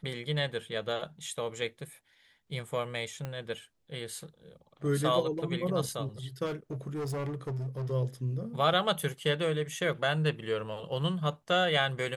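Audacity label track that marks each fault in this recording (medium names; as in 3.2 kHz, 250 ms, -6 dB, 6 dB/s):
3.250000	3.250000	pop -23 dBFS
6.450000	7.920000	clipped -31.5 dBFS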